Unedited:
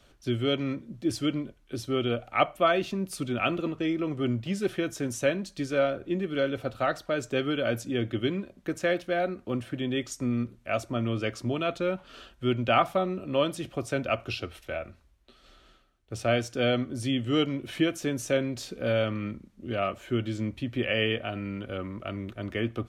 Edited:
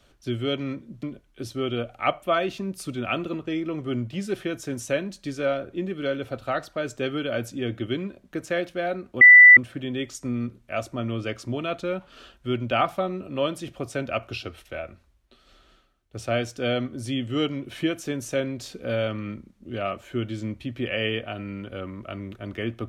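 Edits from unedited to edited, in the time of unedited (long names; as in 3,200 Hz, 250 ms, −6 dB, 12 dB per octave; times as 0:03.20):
0:01.03–0:01.36: remove
0:09.54: insert tone 1,980 Hz −6 dBFS 0.36 s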